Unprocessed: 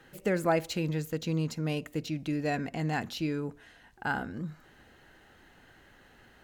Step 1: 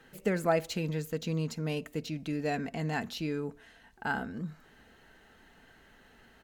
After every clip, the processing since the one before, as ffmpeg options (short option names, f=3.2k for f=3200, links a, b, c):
-af "aecho=1:1:4.5:0.34,volume=-1.5dB"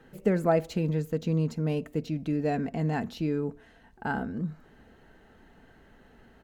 -af "tiltshelf=f=1.2k:g=6"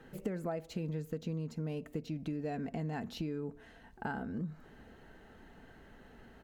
-af "acompressor=threshold=-35dB:ratio=6"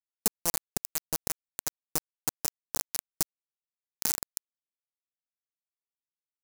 -af "acrusher=bits=4:mix=0:aa=0.000001,aexciter=amount=8:drive=4.6:freq=4.7k"